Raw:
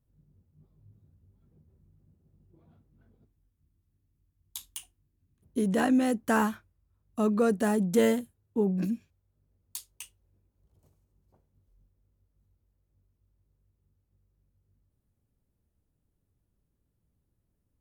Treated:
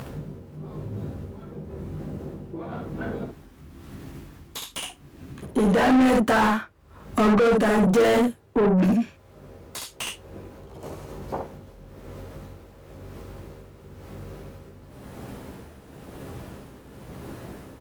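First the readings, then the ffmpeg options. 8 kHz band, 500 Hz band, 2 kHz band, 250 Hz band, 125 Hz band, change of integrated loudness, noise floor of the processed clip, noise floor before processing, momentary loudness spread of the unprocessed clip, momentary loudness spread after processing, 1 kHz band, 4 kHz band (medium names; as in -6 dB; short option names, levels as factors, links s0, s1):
+4.5 dB, +7.5 dB, +9.0 dB, +6.5 dB, +9.5 dB, +4.5 dB, -51 dBFS, -78 dBFS, 19 LU, 23 LU, +9.5 dB, +11.0 dB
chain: -filter_complex "[0:a]asplit=2[s0][s1];[s1]acompressor=mode=upward:threshold=0.0447:ratio=2.5,volume=0.794[s2];[s0][s2]amix=inputs=2:normalize=0,aecho=1:1:15|65:0.562|0.562,tremolo=f=0.98:d=0.63,asplit=2[s3][s4];[s4]highpass=f=720:p=1,volume=56.2,asoftclip=type=tanh:threshold=0.398[s5];[s3][s5]amix=inputs=2:normalize=0,lowpass=f=1300:p=1,volume=0.501,volume=0.708"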